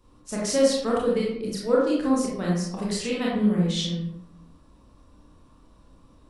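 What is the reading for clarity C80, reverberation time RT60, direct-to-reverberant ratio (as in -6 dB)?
4.0 dB, 0.75 s, -5.5 dB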